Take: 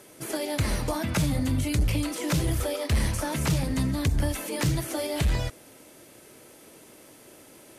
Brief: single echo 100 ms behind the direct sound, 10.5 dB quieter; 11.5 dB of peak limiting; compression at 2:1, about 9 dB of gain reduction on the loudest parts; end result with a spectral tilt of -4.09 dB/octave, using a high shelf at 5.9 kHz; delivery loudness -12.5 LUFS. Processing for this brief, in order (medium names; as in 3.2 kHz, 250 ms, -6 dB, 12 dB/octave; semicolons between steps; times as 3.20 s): treble shelf 5.9 kHz +7 dB; compression 2:1, threshold -37 dBFS; peak limiter -32 dBFS; delay 100 ms -10.5 dB; trim +28 dB